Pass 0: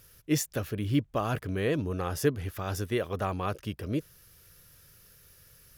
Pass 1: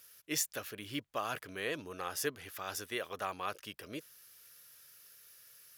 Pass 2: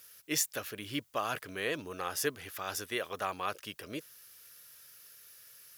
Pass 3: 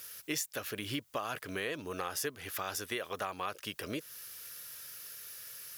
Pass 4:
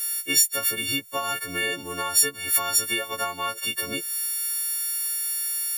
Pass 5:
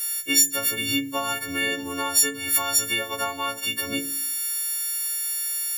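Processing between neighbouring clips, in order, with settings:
high-pass 1.4 kHz 6 dB/octave
added noise blue -73 dBFS; trim +3 dB
compression 4:1, threshold -43 dBFS, peak gain reduction 14.5 dB; trim +8 dB
partials quantised in pitch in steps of 4 st; trim +5 dB
FDN reverb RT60 0.42 s, low-frequency decay 1.6×, high-frequency decay 0.6×, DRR 7.5 dB

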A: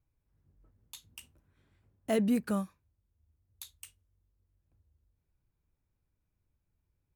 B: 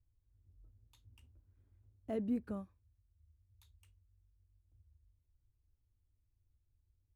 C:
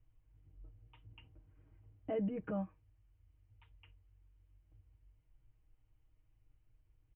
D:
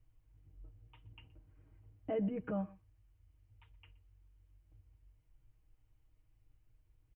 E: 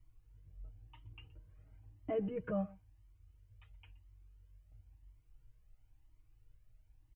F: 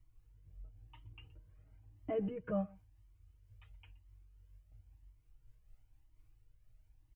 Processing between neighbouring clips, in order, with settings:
FFT filter 110 Hz 0 dB, 160 Hz -19 dB, 260 Hz -9 dB, 9.4 kHz -30 dB; trim +3.5 dB
peak limiter -38 dBFS, peak gain reduction 10.5 dB; rippled Chebyshev low-pass 3.1 kHz, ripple 3 dB; comb 6.4 ms, depth 75%; trim +9.5 dB
delay 122 ms -21.5 dB; trim +1 dB
Shepard-style flanger rising 0.98 Hz; trim +5 dB
random flutter of the level, depth 65%; trim +2.5 dB

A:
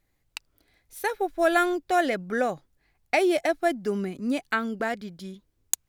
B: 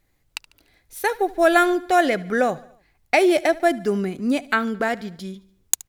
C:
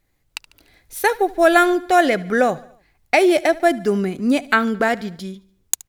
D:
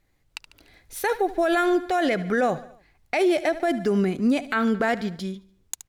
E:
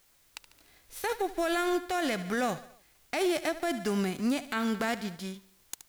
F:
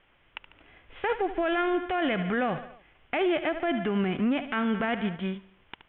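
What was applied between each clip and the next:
feedback delay 73 ms, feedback 54%, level -21 dB; trim +5.5 dB
level rider; trim -1 dB
treble shelf 9.7 kHz -8 dB; peak limiter -14 dBFS, peak gain reduction 11.5 dB
formants flattened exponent 0.6; added noise white -58 dBFS; trim -7.5 dB
steep low-pass 3.3 kHz 96 dB/octave; peak limiter -26.5 dBFS, peak gain reduction 7 dB; trim +7.5 dB

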